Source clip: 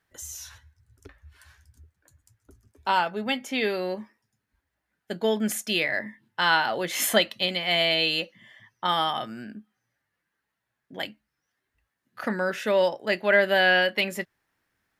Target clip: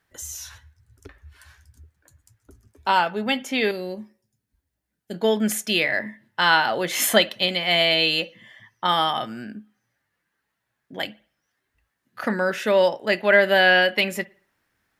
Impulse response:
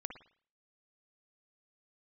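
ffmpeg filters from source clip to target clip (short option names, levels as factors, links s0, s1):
-filter_complex "[0:a]asettb=1/sr,asplit=3[s0][s1][s2];[s0]atrim=end=3.714[s3];[s1]atrim=start=3.71:end=5.14,asetpts=PTS-STARTPTS,afade=t=in:d=0.004:c=qsin,afade=t=out:st=1.426:d=0.004:c=qsin,equalizer=f=1400:w=0.42:g=-13[s4];[s2]atrim=start=5.136[s5];[s3][s4]acrossfade=d=0.004:c1=hsin:c2=qsin[s6];[s6][s5]acrossfade=d=0.004:c1=qsin:c2=hsin,asplit=2[s7][s8];[1:a]atrim=start_sample=2205[s9];[s8][s9]afir=irnorm=-1:irlink=0,volume=0.237[s10];[s7][s10]amix=inputs=2:normalize=0,volume=1.33"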